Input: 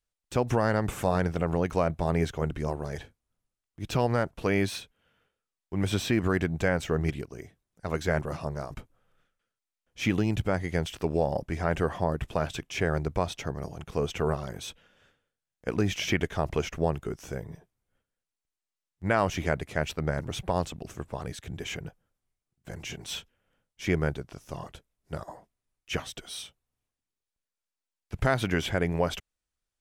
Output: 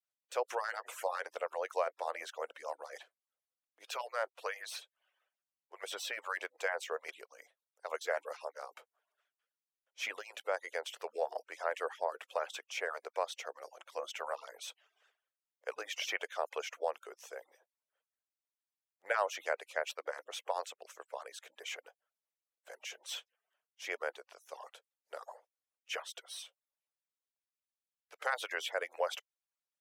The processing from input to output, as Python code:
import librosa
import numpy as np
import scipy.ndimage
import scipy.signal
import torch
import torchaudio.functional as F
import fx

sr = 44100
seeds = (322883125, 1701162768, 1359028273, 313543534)

y = fx.hpss_only(x, sr, part='percussive')
y = scipy.signal.sosfilt(scipy.signal.cheby1(4, 1.0, 500.0, 'highpass', fs=sr, output='sos'), y)
y = y * 10.0 ** (-4.5 / 20.0)